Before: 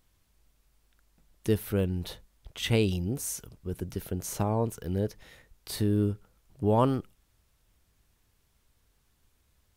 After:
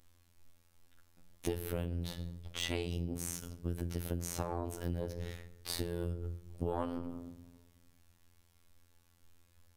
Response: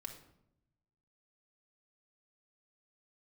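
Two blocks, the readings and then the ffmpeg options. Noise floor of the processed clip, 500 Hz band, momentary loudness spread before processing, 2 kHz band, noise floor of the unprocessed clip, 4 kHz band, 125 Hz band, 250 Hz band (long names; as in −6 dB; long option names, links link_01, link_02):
−68 dBFS, −9.5 dB, 13 LU, −5.5 dB, −70 dBFS, −4.5 dB, −8.5 dB, −10.0 dB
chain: -filter_complex "[0:a]asplit=2[link_01][link_02];[1:a]atrim=start_sample=2205[link_03];[link_02][link_03]afir=irnorm=-1:irlink=0,volume=6dB[link_04];[link_01][link_04]amix=inputs=2:normalize=0,afftfilt=real='hypot(re,im)*cos(PI*b)':imag='0':win_size=2048:overlap=0.75,acompressor=threshold=-30dB:ratio=12,aeval=exprs='0.266*(cos(1*acos(clip(val(0)/0.266,-1,1)))-cos(1*PI/2))+0.0237*(cos(6*acos(clip(val(0)/0.266,-1,1)))-cos(6*PI/2))':channel_layout=same,volume=-3dB"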